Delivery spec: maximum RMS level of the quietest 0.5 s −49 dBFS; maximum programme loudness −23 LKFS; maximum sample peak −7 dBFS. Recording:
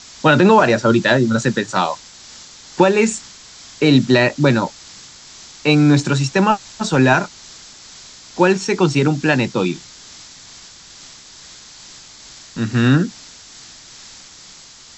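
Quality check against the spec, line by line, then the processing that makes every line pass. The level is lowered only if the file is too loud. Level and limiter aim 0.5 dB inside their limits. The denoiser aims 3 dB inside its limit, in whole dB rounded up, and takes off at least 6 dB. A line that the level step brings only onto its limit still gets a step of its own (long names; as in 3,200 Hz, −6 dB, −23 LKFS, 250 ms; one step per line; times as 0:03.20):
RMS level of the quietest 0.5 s −42 dBFS: out of spec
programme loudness −16.0 LKFS: out of spec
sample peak −2.0 dBFS: out of spec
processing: level −7.5 dB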